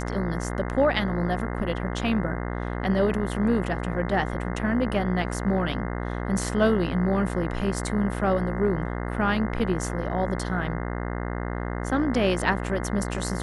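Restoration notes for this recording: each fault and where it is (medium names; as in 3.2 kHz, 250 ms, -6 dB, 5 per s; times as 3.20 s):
buzz 60 Hz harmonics 35 -30 dBFS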